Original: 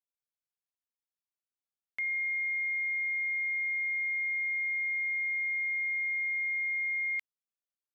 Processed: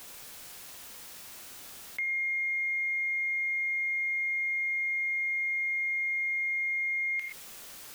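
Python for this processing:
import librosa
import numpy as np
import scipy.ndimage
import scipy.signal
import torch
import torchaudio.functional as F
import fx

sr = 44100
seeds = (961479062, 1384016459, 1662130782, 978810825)

y = x + 0.5 * 10.0 ** (-52.5 / 20.0) * np.sign(x)
y = fx.rev_gated(y, sr, seeds[0], gate_ms=140, shape='flat', drr_db=7.5)
y = fx.env_flatten(y, sr, amount_pct=50)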